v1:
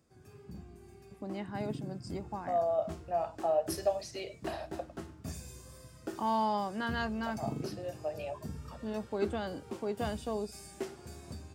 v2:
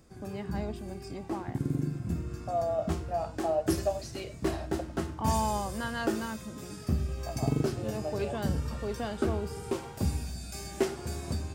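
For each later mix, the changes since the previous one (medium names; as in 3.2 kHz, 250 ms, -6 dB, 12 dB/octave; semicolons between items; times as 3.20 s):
first voice: entry -1.00 s; background +10.5 dB; master: remove high-pass 69 Hz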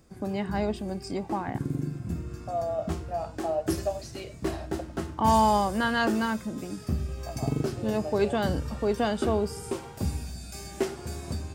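first voice +9.0 dB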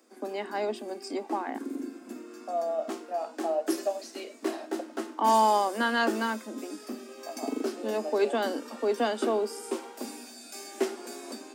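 master: add steep high-pass 230 Hz 96 dB/octave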